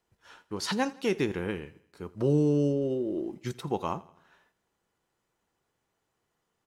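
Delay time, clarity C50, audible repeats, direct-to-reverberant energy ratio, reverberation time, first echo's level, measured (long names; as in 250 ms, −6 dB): 83 ms, no reverb audible, 3, no reverb audible, no reverb audible, −21.0 dB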